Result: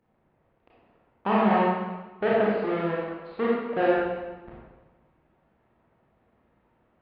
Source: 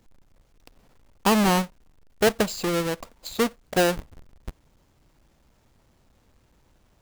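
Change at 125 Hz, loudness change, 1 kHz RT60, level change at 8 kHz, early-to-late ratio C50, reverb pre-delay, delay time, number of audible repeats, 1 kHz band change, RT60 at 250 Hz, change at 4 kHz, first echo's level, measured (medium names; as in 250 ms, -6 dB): -4.0 dB, -1.5 dB, 1.2 s, under -40 dB, -2.5 dB, 26 ms, no echo, no echo, +1.0 dB, 1.3 s, -13.5 dB, no echo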